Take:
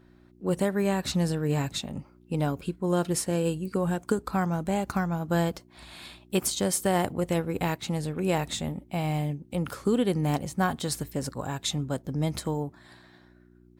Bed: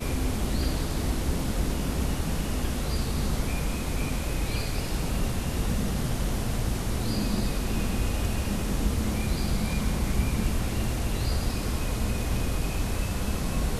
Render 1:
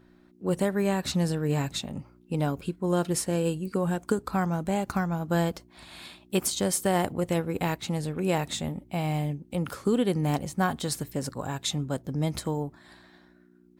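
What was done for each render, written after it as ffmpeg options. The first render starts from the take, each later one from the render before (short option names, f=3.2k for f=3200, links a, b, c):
-af "bandreject=f=60:t=h:w=4,bandreject=f=120:t=h:w=4"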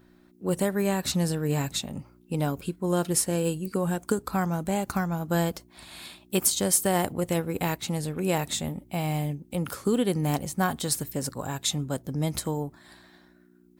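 -af "highshelf=f=7.8k:g=10.5"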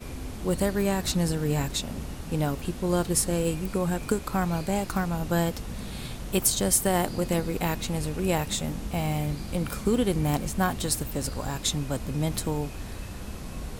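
-filter_complex "[1:a]volume=-9dB[a];[0:a][a]amix=inputs=2:normalize=0"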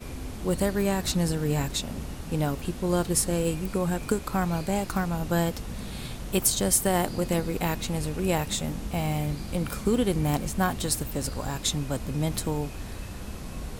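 -af anull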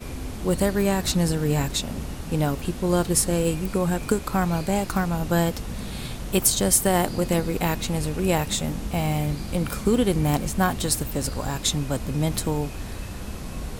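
-af "volume=3.5dB"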